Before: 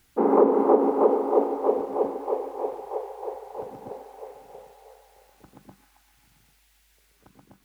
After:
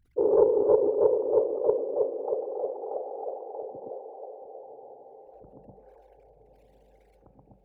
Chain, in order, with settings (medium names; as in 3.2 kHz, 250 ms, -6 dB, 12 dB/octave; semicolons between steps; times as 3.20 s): resonances exaggerated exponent 3; de-hum 185.4 Hz, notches 10; on a send: echo that smears into a reverb 1123 ms, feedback 41%, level -12.5 dB; on the sum: loudspeaker Doppler distortion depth 0.12 ms; trim -2 dB